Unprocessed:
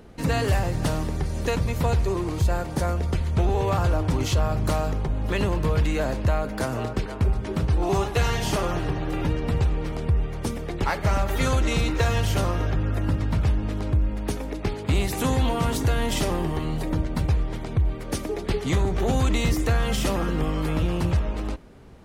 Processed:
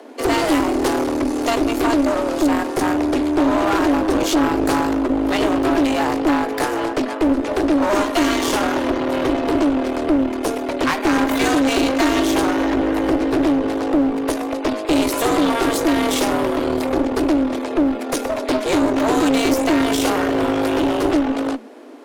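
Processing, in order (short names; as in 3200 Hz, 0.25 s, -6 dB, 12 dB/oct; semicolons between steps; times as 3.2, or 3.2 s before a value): added harmonics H 6 -19 dB, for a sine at -13 dBFS; frequency shift +220 Hz; one-sided clip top -28.5 dBFS; gain +7.5 dB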